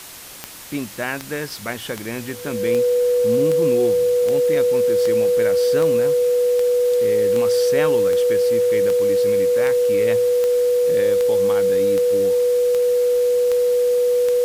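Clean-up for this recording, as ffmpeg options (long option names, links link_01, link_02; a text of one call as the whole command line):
ffmpeg -i in.wav -af "adeclick=threshold=4,bandreject=frequency=490:width=30,afwtdn=0.014" out.wav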